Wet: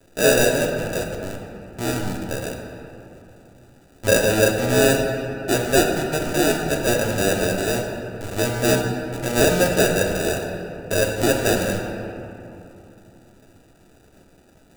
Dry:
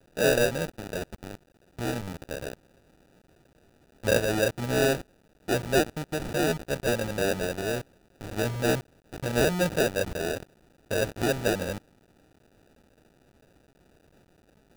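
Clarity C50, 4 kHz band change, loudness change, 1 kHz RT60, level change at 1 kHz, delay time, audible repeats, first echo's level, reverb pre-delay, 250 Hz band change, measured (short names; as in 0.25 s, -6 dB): 3.5 dB, +8.0 dB, +7.0 dB, 3.1 s, +7.5 dB, none, none, none, 3 ms, +7.5 dB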